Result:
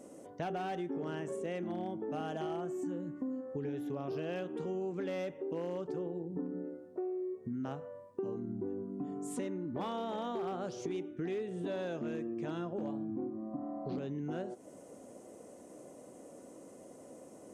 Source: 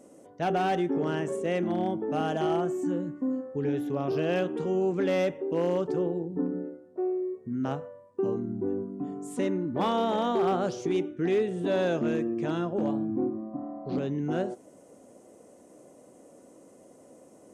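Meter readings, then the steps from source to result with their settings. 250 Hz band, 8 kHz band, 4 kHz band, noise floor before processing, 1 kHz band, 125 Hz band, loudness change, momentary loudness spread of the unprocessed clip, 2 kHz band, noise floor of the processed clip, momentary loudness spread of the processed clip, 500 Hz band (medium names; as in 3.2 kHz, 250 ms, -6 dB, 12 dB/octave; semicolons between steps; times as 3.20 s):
-9.0 dB, -4.5 dB, -10.5 dB, -55 dBFS, -10.5 dB, -9.0 dB, -9.5 dB, 7 LU, -10.5 dB, -54 dBFS, 15 LU, -10.0 dB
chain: compression 4:1, threshold -38 dBFS, peak gain reduction 13.5 dB; trim +1 dB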